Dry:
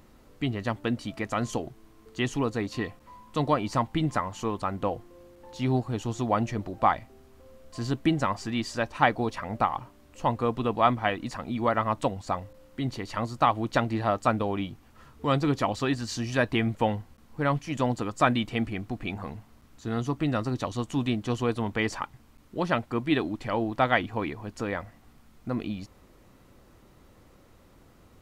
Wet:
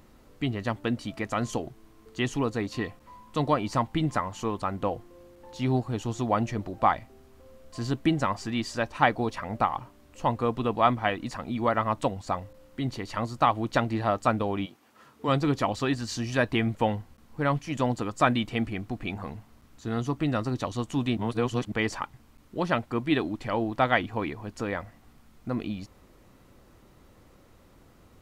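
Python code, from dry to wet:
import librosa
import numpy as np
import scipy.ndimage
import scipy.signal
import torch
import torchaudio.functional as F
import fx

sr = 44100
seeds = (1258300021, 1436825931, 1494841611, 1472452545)

y = fx.highpass(x, sr, hz=fx.line((14.65, 400.0), (15.27, 160.0)), slope=12, at=(14.65, 15.27), fade=0.02)
y = fx.edit(y, sr, fx.reverse_span(start_s=21.17, length_s=0.55), tone=tone)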